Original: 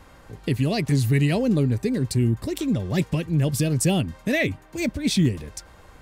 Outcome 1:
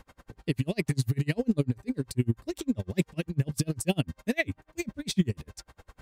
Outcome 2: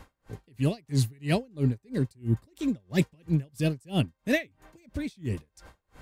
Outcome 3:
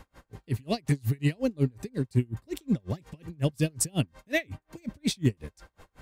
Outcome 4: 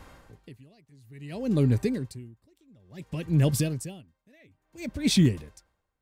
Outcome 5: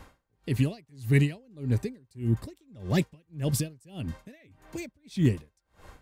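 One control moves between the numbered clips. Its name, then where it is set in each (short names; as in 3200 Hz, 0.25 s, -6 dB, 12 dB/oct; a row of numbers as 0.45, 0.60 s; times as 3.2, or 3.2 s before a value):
dB-linear tremolo, rate: 10, 3, 5.5, 0.58, 1.7 Hz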